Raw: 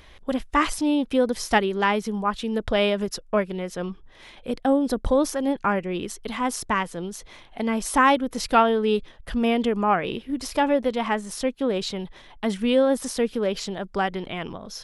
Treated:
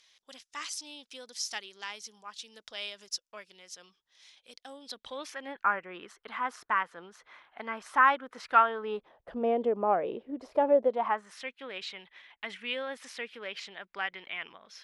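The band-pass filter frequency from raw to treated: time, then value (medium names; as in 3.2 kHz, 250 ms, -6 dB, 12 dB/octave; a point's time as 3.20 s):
band-pass filter, Q 2
4.68 s 5.7 kHz
5.66 s 1.4 kHz
8.68 s 1.4 kHz
9.31 s 570 Hz
10.87 s 570 Hz
11.42 s 2.2 kHz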